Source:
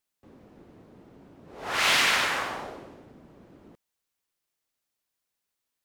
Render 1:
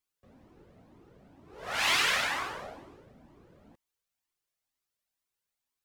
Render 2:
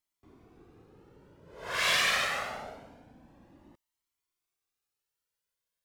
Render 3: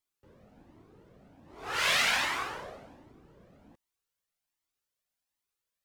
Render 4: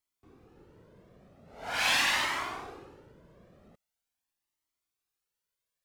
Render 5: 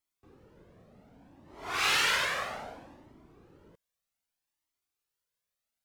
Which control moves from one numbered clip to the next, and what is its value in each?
cascading flanger, rate: 2.1, 0.25, 1.3, 0.43, 0.64 Hz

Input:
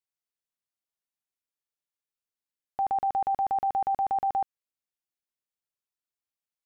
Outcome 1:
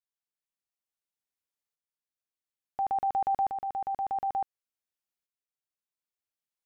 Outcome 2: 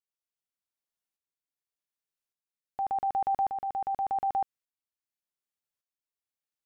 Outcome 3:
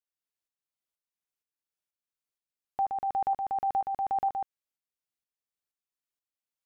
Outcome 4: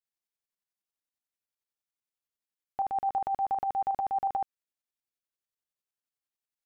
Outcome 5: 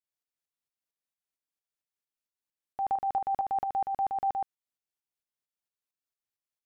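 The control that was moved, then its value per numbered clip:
tremolo, rate: 0.57, 0.86, 2.1, 11, 4.4 Hz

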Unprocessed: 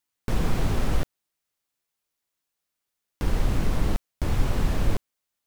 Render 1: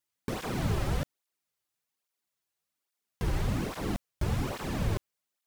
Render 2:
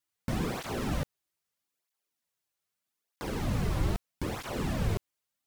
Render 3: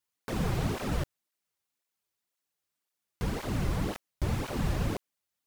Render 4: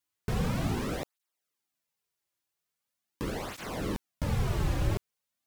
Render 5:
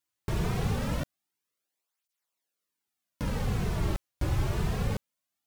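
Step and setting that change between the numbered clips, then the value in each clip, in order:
tape flanging out of phase, nulls at: 1.2, 0.79, 1.9, 0.42, 0.24 Hz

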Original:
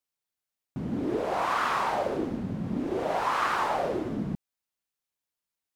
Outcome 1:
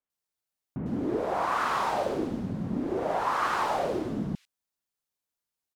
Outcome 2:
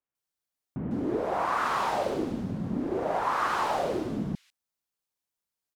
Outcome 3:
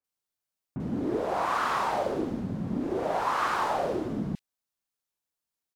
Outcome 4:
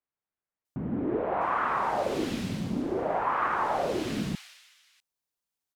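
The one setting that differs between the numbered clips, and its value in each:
bands offset in time, time: 100, 150, 40, 650 ms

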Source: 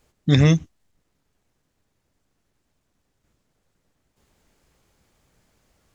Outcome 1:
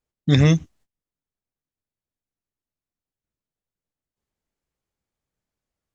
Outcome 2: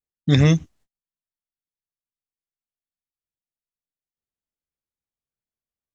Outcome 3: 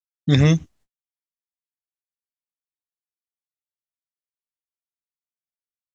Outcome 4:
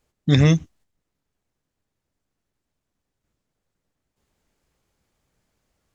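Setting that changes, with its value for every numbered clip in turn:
gate, range: -22, -35, -54, -8 dB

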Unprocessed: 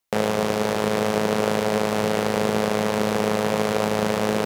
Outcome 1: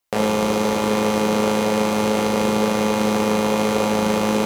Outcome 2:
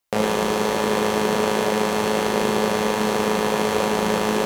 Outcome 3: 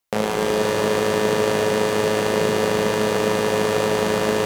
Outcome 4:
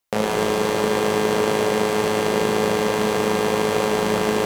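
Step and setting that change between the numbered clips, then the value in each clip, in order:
non-linear reverb, gate: 90, 140, 530, 280 ms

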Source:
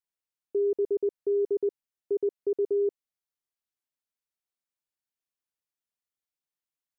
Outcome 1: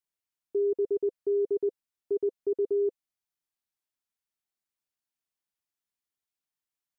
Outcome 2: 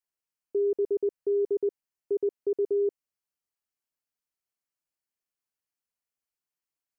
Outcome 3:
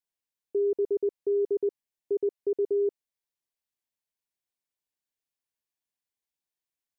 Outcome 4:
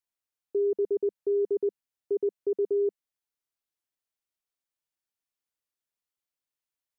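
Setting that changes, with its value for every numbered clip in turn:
notch, frequency: 510, 3600, 1300, 200 Hz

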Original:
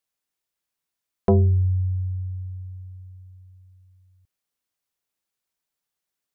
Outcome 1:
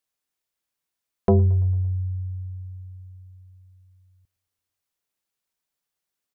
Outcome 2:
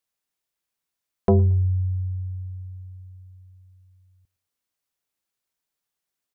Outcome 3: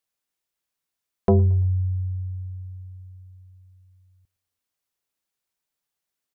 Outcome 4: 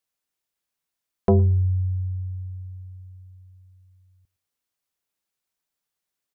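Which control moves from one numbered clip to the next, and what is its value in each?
feedback echo, feedback: 61, 26, 41, 15%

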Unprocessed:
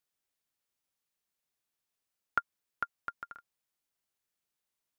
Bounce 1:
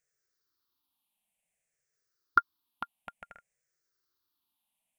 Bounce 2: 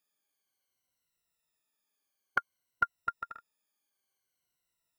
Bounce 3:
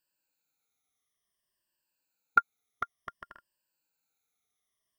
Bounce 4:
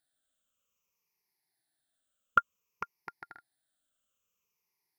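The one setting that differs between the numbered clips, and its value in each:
moving spectral ripple, ripples per octave: 0.53, 2, 1.3, 0.8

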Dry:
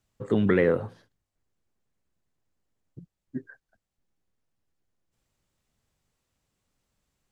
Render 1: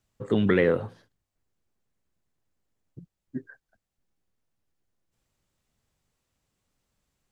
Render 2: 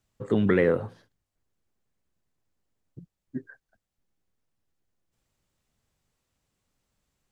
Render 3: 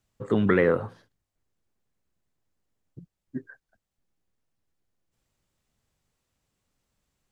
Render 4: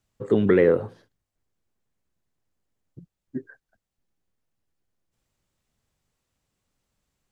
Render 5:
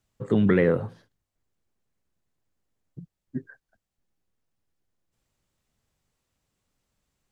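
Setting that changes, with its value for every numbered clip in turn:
dynamic EQ, frequency: 3300, 10000, 1200, 400, 150 Hz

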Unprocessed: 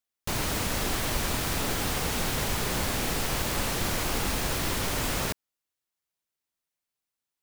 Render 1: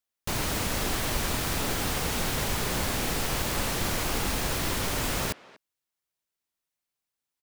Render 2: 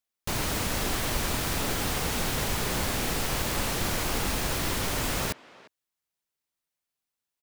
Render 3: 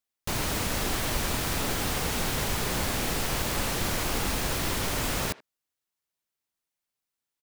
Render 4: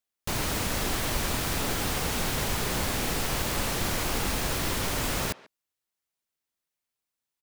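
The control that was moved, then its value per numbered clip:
speakerphone echo, time: 240, 350, 80, 140 ms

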